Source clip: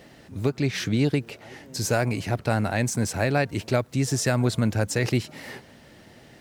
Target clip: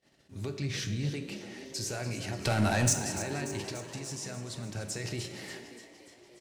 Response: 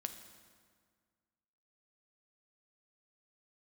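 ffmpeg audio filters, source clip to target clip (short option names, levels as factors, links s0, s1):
-filter_complex "[0:a]lowpass=6400,aemphasis=mode=production:type=75fm,agate=range=0.0501:threshold=0.00447:ratio=16:detection=peak,asplit=3[s0][s1][s2];[s0]afade=t=out:st=0.61:d=0.02[s3];[s1]asubboost=boost=8:cutoff=240,afade=t=in:st=0.61:d=0.02,afade=t=out:st=1.09:d=0.02[s4];[s2]afade=t=in:st=1.09:d=0.02[s5];[s3][s4][s5]amix=inputs=3:normalize=0,alimiter=limit=0.112:level=0:latency=1:release=40,asettb=1/sr,asplit=3[s6][s7][s8];[s6]atrim=end=2.414[s9];[s7]atrim=start=2.41:end=2.93,asetpts=PTS-STARTPTS,afade=t=in:d=0.004:c=qsin,afade=t=out:st=0.516:d=0.004:c=qsin,aeval=exprs='0.224*sin(PI/2*2.82*val(0)/0.224)':c=same[s10];[s8]atrim=start=2.926[s11];[s9][s10]acrossfade=d=0.004:c1=hsin:c2=qsin[s12];[s12][s11]acrossfade=d=0.004:c1=qsin:c2=hsin,asettb=1/sr,asplit=3[s13][s14][s15];[s13]atrim=end=3.694[s16];[s14]atrim=start=3.69:end=4.75,asetpts=PTS-STARTPTS,afade=t=in:d=0.004:c=qsin,afade=t=out:st=1.056:d=0.004:c=qsin,acompressor=threshold=0.0355:ratio=6[s17];[s15]atrim=start=4.746[s18];[s16][s17]acrossfade=d=0.004:c1=hsin:c2=qsin[s19];[s19][s18]acrossfade=d=0.004:c1=qsin:c2=hsin,asplit=8[s20][s21][s22][s23][s24][s25][s26][s27];[s21]adelay=292,afreqshift=59,volume=0.237[s28];[s22]adelay=584,afreqshift=118,volume=0.15[s29];[s23]adelay=876,afreqshift=177,volume=0.0944[s30];[s24]adelay=1168,afreqshift=236,volume=0.0596[s31];[s25]adelay=1460,afreqshift=295,volume=0.0372[s32];[s26]adelay=1752,afreqshift=354,volume=0.0234[s33];[s27]adelay=2044,afreqshift=413,volume=0.0148[s34];[s20][s28][s29][s30][s31][s32][s33][s34]amix=inputs=8:normalize=0[s35];[1:a]atrim=start_sample=2205,asetrate=79380,aresample=44100[s36];[s35][s36]afir=irnorm=-1:irlink=0"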